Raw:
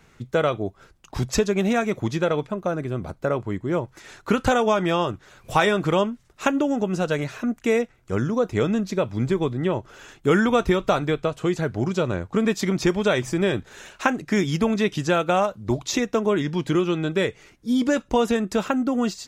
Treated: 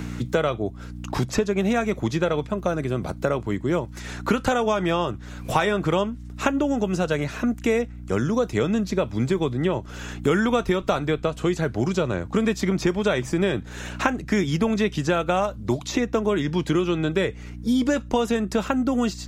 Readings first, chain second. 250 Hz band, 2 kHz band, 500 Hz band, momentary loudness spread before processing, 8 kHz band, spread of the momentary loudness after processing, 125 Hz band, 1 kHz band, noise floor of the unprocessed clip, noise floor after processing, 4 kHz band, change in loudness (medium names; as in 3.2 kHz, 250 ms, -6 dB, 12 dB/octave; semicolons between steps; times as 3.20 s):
0.0 dB, -1.0 dB, -1.0 dB, 7 LU, -1.5 dB, 5 LU, +0.5 dB, -1.5 dB, -58 dBFS, -38 dBFS, -1.0 dB, -0.5 dB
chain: hum 60 Hz, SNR 17 dB; three bands compressed up and down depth 70%; trim -1 dB